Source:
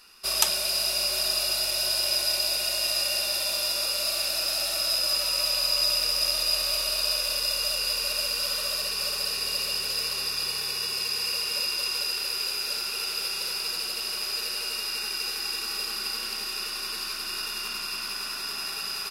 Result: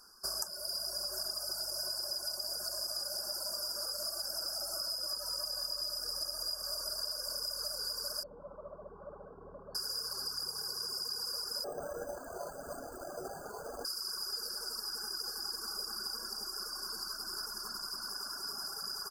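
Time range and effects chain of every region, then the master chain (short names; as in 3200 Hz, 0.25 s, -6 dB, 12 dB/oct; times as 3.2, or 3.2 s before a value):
8.23–9.75 LPF 1000 Hz 24 dB/oct + bell 160 Hz +4.5 dB 0.28 oct
11.64–13.85 resonator 53 Hz, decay 0.22 s, harmonics odd, mix 70% + careless resampling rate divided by 8×, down none, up hold
whole clip: reverb removal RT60 1.9 s; FFT band-reject 1700–4500 Hz; compressor 12:1, threshold -31 dBFS; gain -3 dB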